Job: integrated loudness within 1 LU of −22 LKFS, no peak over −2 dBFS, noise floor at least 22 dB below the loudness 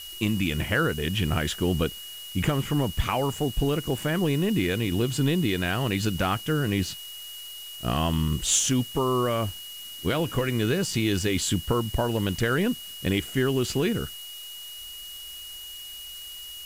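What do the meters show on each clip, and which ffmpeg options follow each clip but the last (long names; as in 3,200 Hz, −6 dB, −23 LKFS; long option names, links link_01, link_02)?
interfering tone 2,900 Hz; level of the tone −39 dBFS; background noise floor −40 dBFS; target noise floor −48 dBFS; integrated loudness −26.0 LKFS; sample peak −10.0 dBFS; target loudness −22.0 LKFS
→ -af "bandreject=frequency=2900:width=30"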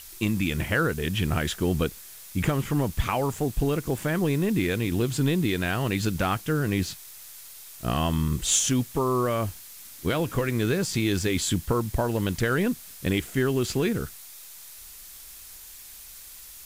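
interfering tone none found; background noise floor −45 dBFS; target noise floor −48 dBFS
→ -af "afftdn=noise_reduction=6:noise_floor=-45"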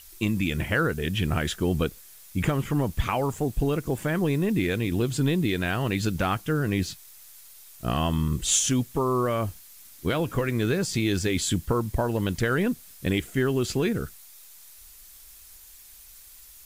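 background noise floor −49 dBFS; integrated loudness −26.5 LKFS; sample peak −10.5 dBFS; target loudness −22.0 LKFS
→ -af "volume=4.5dB"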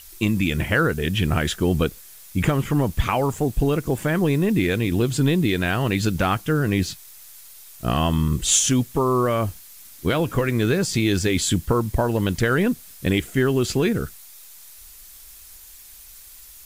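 integrated loudness −22.0 LKFS; sample peak −6.0 dBFS; background noise floor −45 dBFS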